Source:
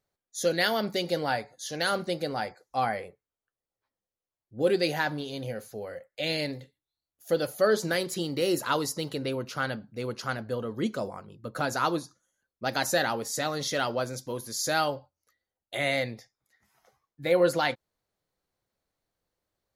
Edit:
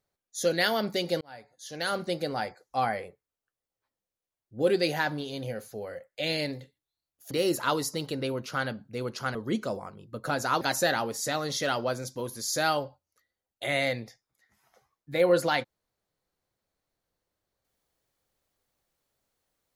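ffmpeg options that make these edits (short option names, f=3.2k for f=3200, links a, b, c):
-filter_complex "[0:a]asplit=5[a][b][c][d][e];[a]atrim=end=1.21,asetpts=PTS-STARTPTS,afade=t=out:st=1.206:d=0.004:c=hsin[f];[b]atrim=start=1.21:end=7.312,asetpts=PTS-STARTPTS,afade=t=in:d=0.92[g];[c]atrim=start=8.338:end=10.382[h];[d]atrim=start=10.658:end=11.922[i];[e]atrim=start=12.718[j];[f][g]concat=n=2:v=0:a=1[k];[k][h]acrossfade=d=0.004:c1=hsin:c2=hsin[l];[l][i]acrossfade=d=0.004:c1=hsin:c2=hsin[m];[m][j]acrossfade=d=0.004:c1=hsin:c2=hsin"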